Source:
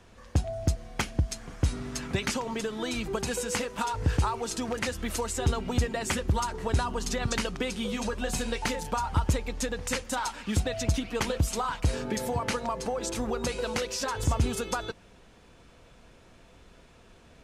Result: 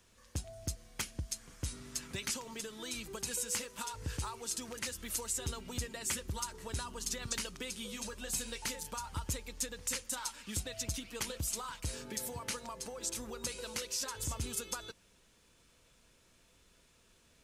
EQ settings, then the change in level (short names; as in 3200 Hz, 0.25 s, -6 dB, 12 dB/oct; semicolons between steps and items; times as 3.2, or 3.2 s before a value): pre-emphasis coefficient 0.8; bell 740 Hz -6.5 dB 0.24 oct; 0.0 dB